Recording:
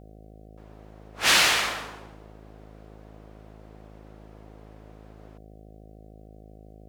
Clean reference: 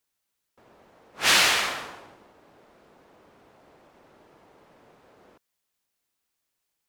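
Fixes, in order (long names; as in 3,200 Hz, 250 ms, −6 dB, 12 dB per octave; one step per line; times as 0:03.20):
hum removal 53.1 Hz, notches 14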